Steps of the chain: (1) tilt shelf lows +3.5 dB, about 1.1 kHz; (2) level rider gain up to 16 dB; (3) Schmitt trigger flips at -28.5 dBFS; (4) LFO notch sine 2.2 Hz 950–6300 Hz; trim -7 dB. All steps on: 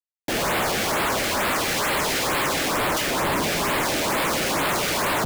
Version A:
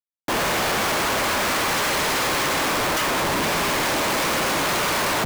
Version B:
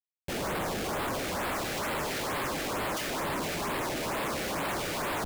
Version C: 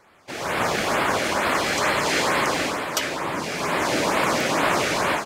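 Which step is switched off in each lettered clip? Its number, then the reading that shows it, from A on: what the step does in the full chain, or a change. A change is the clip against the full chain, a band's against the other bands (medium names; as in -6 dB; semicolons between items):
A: 4, crest factor change -6.5 dB; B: 2, loudness change -9.5 LU; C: 3, distortion -1 dB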